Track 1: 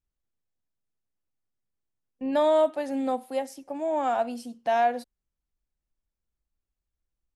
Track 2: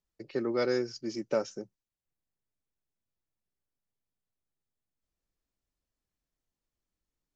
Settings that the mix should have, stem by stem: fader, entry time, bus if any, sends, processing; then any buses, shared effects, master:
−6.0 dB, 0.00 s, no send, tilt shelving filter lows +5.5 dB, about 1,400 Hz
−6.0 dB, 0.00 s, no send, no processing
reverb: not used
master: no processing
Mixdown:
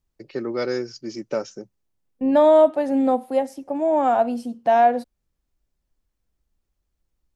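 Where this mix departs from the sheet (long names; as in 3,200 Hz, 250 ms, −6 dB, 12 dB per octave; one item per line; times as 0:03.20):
stem 1 −6.0 dB → +4.0 dB
stem 2 −6.0 dB → +3.5 dB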